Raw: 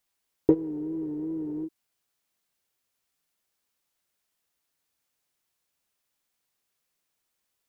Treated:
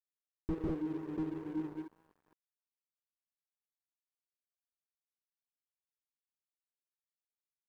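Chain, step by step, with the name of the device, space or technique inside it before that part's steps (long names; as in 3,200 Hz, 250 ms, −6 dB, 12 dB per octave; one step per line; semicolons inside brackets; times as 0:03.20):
multi-tap delay 89/149/183/191/203/688 ms −18.5/−3.5/−12.5/−8.5/−4.5/−12.5 dB
early transistor amplifier (dead-zone distortion −42 dBFS; slew-rate limiting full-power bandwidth 15 Hz)
level −6 dB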